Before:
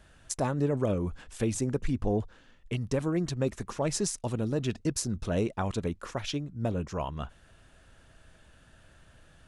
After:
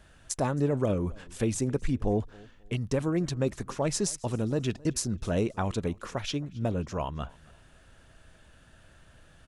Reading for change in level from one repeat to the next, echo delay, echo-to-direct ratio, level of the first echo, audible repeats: no steady repeat, 0.268 s, -23.5 dB, -24.0 dB, 1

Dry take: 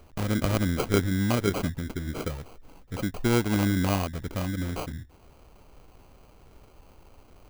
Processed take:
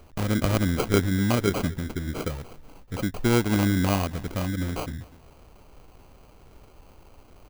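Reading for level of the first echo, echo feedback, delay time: -21.5 dB, 32%, 0.245 s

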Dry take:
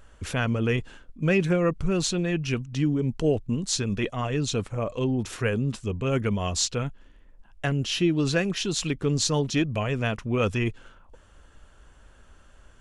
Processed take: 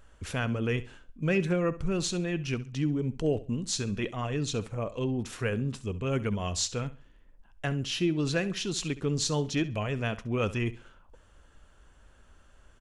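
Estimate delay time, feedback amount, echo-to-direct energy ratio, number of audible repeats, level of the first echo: 67 ms, 28%, -16.0 dB, 2, -16.5 dB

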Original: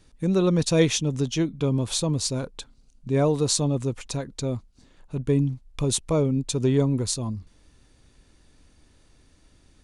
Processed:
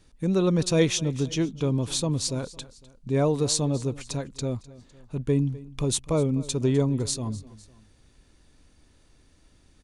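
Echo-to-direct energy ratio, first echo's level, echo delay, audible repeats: -18.5 dB, -19.5 dB, 0.253 s, 2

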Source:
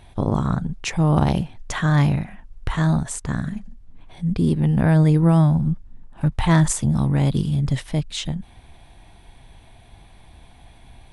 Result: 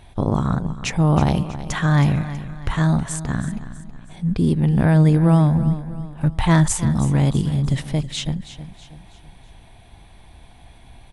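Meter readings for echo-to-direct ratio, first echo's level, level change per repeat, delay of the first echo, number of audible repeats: -12.5 dB, -13.5 dB, -7.5 dB, 0.322 s, 3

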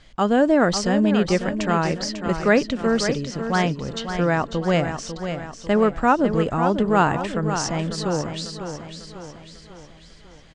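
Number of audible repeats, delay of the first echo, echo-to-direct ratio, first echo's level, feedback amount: 5, 0.547 s, -7.5 dB, -8.5 dB, 49%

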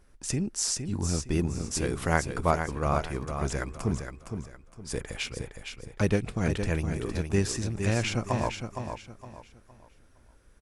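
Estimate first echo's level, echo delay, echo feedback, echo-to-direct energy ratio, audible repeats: -7.0 dB, 0.463 s, 31%, -6.5 dB, 3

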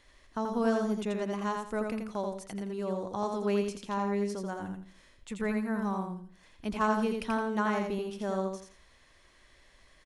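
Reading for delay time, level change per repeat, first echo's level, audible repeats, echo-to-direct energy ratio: 84 ms, -11.5 dB, -4.0 dB, 3, -3.5 dB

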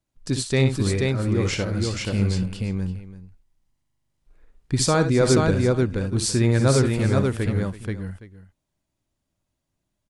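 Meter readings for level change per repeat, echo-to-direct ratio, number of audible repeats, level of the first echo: no steady repeat, -1.5 dB, 4, -10.0 dB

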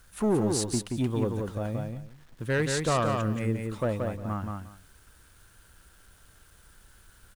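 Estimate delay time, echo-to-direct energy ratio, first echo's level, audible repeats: 0.177 s, -4.0 dB, -4.0 dB, 2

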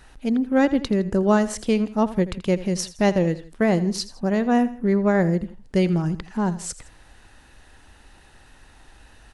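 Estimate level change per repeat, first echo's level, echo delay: -7.5 dB, -16.0 dB, 82 ms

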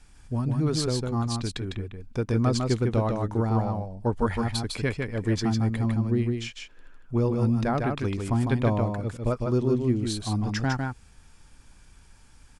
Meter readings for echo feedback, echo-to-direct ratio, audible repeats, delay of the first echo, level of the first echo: no steady repeat, -4.0 dB, 1, 0.153 s, -4.0 dB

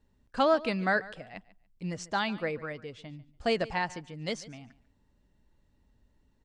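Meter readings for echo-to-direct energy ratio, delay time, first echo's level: -19.0 dB, 0.144 s, -19.0 dB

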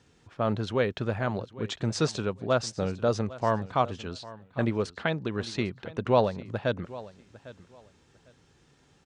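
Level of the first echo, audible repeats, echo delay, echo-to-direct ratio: -18.0 dB, 2, 0.802 s, -18.0 dB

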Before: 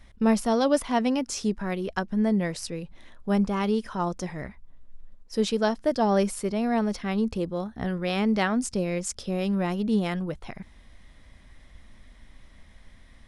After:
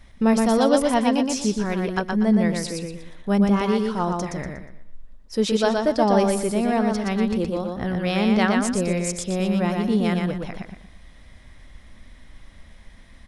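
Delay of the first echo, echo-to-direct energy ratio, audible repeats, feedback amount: 0.12 s, -3.0 dB, 4, 32%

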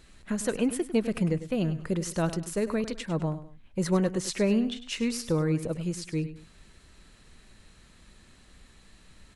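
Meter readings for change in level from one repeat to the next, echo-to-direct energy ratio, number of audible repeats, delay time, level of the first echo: -9.5 dB, -12.5 dB, 2, 0.101 s, -13.0 dB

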